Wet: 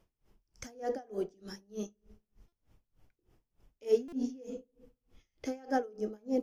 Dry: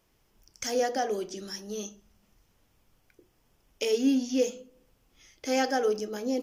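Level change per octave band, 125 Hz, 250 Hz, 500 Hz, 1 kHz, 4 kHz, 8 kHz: can't be measured, −7.5 dB, −5.5 dB, −8.0 dB, −17.0 dB, −16.0 dB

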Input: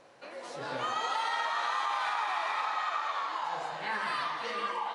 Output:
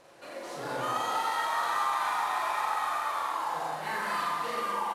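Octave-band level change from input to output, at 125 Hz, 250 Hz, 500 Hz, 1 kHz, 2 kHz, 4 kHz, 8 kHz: can't be measured, +4.5 dB, +3.0 dB, +2.5 dB, 0.0 dB, −1.5 dB, +6.5 dB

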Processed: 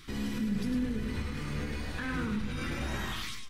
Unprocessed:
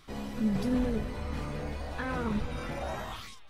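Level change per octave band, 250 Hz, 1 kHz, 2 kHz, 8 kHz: −1.0, −4.0, +2.5, +4.5 decibels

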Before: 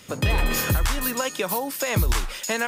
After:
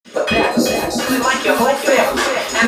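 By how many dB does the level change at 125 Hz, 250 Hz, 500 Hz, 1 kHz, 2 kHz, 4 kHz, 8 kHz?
−7.5, +12.0, +13.5, +12.0, +11.0, +9.0, +5.0 decibels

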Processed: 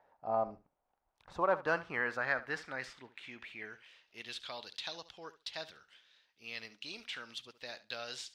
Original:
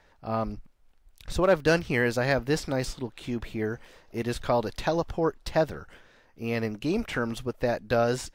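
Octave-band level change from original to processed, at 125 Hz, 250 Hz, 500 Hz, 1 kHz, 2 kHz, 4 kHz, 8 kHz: −23.0, −20.0, −13.5, −7.0, −5.5, −4.5, −12.5 decibels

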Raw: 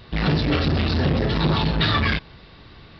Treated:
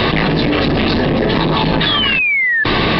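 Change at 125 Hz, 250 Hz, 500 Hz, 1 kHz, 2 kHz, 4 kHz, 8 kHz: +2.5 dB, +8.0 dB, +10.0 dB, +9.5 dB, +13.5 dB, +10.5 dB, can't be measured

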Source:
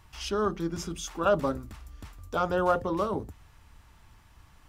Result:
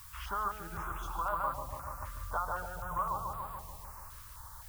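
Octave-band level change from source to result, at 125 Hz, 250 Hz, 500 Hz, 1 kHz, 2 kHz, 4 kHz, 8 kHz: −7.0, −19.5, −16.5, −2.5, −5.0, −12.5, −7.5 decibels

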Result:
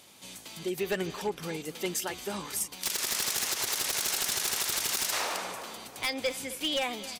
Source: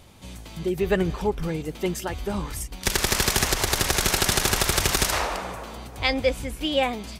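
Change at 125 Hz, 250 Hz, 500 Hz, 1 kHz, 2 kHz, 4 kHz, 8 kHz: −17.0, −10.0, −9.0, −8.5, −8.0, −5.0, −4.0 decibels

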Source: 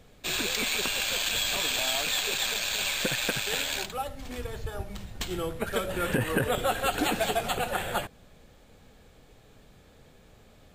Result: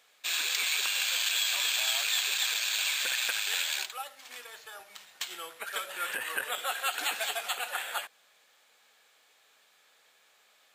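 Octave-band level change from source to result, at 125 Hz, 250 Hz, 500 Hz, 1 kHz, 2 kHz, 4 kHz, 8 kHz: below −35 dB, −25.5 dB, −14.0 dB, −5.5 dB, −0.5 dB, 0.0 dB, 0.0 dB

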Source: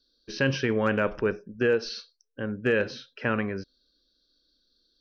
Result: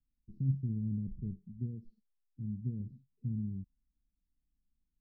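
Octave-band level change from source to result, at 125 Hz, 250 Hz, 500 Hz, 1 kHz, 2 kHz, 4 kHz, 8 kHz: −0.5 dB, −9.0 dB, −35.5 dB, below −40 dB, below −40 dB, below −40 dB, can't be measured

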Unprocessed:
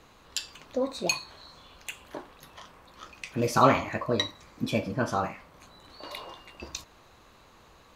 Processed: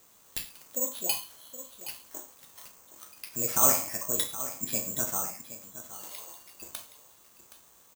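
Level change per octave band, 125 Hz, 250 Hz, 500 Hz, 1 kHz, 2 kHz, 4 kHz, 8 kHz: −12.0, −11.0, −9.0, −9.5, −9.0, −4.5, +10.5 decibels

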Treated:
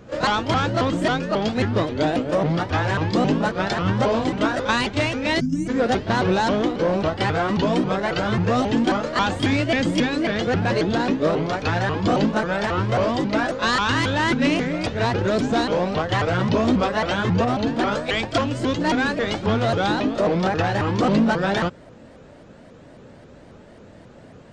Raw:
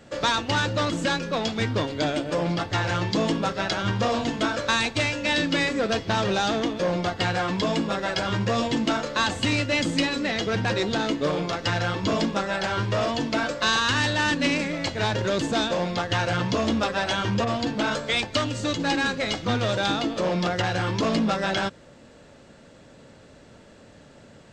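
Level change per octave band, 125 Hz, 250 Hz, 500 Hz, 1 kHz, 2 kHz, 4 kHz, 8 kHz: +4.0, +5.0, +4.5, +4.0, +1.0, −2.0, −3.5 decibels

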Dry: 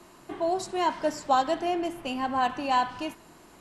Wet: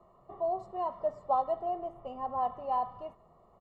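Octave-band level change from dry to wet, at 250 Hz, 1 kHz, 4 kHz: −16.5 dB, −5.5 dB, below −20 dB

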